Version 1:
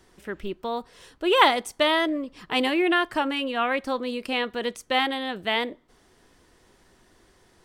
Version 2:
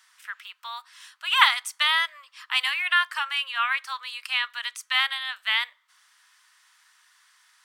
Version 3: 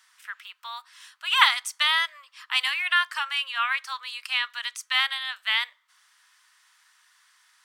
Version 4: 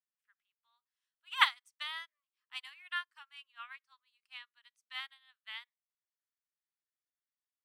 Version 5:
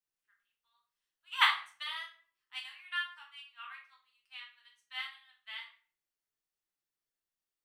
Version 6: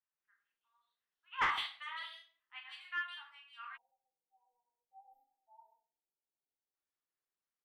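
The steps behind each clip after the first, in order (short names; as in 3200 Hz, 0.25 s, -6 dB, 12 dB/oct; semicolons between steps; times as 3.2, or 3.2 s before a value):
steep high-pass 1100 Hz 36 dB/oct; gain +3.5 dB
dynamic EQ 5800 Hz, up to +4 dB, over -42 dBFS, Q 1.2; gain -1 dB
upward expander 2.5:1, over -38 dBFS; gain -6.5 dB
shoebox room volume 42 m³, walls mixed, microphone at 0.84 m; gain -2.5 dB
three bands offset in time mids, lows, highs 0.13/0.16 s, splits 630/2900 Hz; spectral delete 3.77–6.74, 960–12000 Hz; overdrive pedal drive 14 dB, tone 1200 Hz, clips at -13.5 dBFS; gain -4.5 dB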